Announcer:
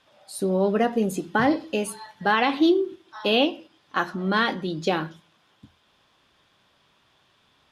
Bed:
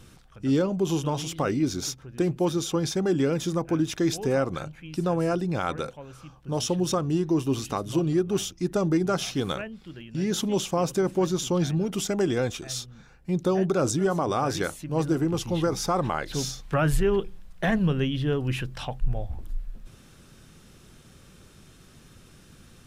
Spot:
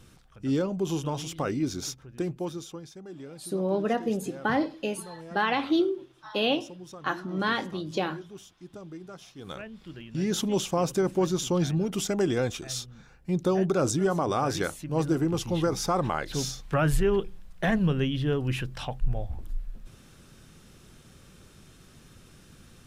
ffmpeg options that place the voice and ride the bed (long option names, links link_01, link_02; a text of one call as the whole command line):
ffmpeg -i stem1.wav -i stem2.wav -filter_complex "[0:a]adelay=3100,volume=-5dB[link_01];[1:a]volume=14.5dB,afade=type=out:start_time=1.99:duration=0.88:silence=0.16788,afade=type=in:start_time=9.38:duration=0.48:silence=0.125893[link_02];[link_01][link_02]amix=inputs=2:normalize=0" out.wav